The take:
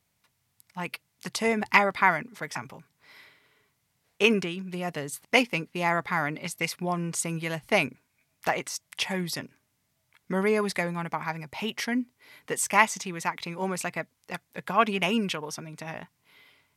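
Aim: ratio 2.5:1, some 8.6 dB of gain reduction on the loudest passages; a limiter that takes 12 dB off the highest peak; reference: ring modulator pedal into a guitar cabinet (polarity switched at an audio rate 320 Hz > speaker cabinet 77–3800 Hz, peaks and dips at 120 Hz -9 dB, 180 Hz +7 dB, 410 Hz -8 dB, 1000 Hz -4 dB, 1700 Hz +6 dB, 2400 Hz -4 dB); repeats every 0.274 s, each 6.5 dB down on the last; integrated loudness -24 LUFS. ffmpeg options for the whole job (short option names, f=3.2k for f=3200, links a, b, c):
-af "acompressor=threshold=-28dB:ratio=2.5,alimiter=limit=-24dB:level=0:latency=1,aecho=1:1:274|548|822|1096|1370|1644:0.473|0.222|0.105|0.0491|0.0231|0.0109,aeval=exprs='val(0)*sgn(sin(2*PI*320*n/s))':c=same,highpass=77,equalizer=f=120:t=q:w=4:g=-9,equalizer=f=180:t=q:w=4:g=7,equalizer=f=410:t=q:w=4:g=-8,equalizer=f=1k:t=q:w=4:g=-4,equalizer=f=1.7k:t=q:w=4:g=6,equalizer=f=2.4k:t=q:w=4:g=-4,lowpass=f=3.8k:w=0.5412,lowpass=f=3.8k:w=1.3066,volume=12dB"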